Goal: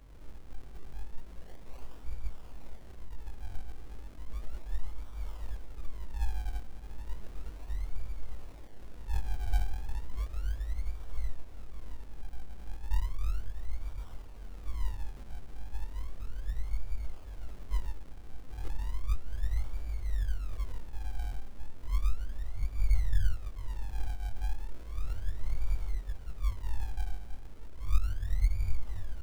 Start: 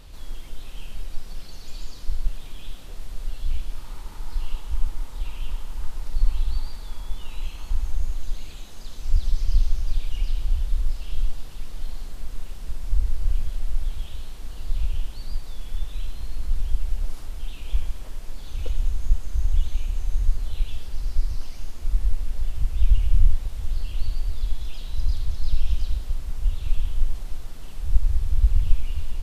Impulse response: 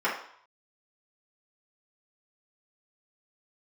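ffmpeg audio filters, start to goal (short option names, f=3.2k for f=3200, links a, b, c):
-af "afftfilt=real='re':imag='-im':win_size=2048:overlap=0.75,acrusher=samples=38:mix=1:aa=0.000001:lfo=1:lforange=38:lforate=0.34,volume=-5dB"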